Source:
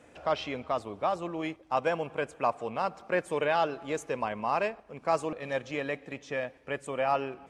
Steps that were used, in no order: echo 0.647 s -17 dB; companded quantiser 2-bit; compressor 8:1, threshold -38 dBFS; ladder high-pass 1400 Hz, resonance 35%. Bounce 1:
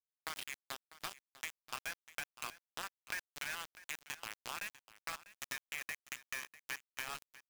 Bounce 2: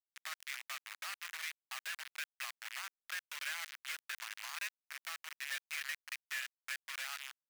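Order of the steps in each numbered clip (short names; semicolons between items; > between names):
ladder high-pass > companded quantiser > compressor > echo; compressor > echo > companded quantiser > ladder high-pass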